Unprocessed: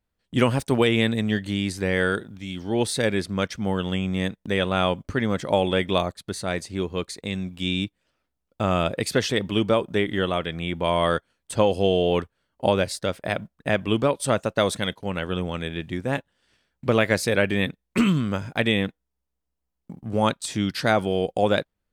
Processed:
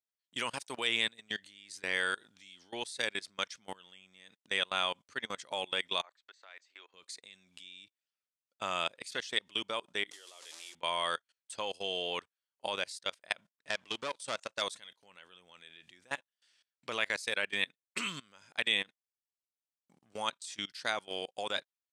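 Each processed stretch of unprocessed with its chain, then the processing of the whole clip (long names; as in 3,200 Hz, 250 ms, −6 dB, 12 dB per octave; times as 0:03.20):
0:06.02–0:06.94: three-way crossover with the lows and the highs turned down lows −17 dB, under 600 Hz, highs −15 dB, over 3,000 Hz + downward compressor 2.5 to 1, threshold −41 dBFS + linear-phase brick-wall band-pass 220–8,300 Hz
0:10.11–0:10.75: linear delta modulator 64 kbit/s, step −28 dBFS + high-pass filter 360 Hz 24 dB per octave + parametric band 1,600 Hz −7.5 dB 2.5 octaves
0:13.57–0:14.62: low-pass filter 9,900 Hz 24 dB per octave + leveller curve on the samples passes 2 + downward compressor 3 to 1, threshold −22 dBFS
whole clip: dynamic equaliser 980 Hz, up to +4 dB, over −39 dBFS, Q 3.4; output level in coarse steps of 23 dB; meter weighting curve ITU-R 468; level −9 dB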